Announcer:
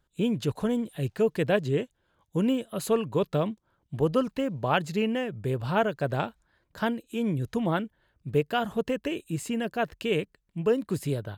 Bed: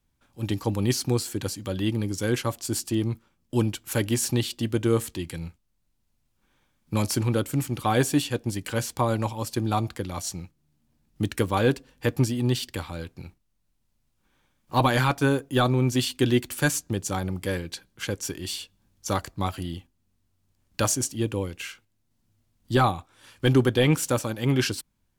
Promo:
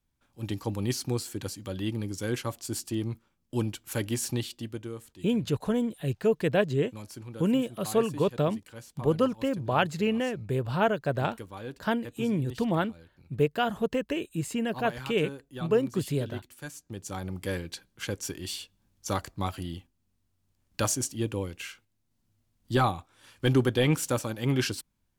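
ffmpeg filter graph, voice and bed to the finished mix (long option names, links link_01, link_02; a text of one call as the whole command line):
ffmpeg -i stem1.wav -i stem2.wav -filter_complex "[0:a]adelay=5050,volume=0dB[link_01];[1:a]volume=9dB,afade=type=out:start_time=4.32:duration=0.63:silence=0.237137,afade=type=in:start_time=16.75:duration=0.78:silence=0.188365[link_02];[link_01][link_02]amix=inputs=2:normalize=0" out.wav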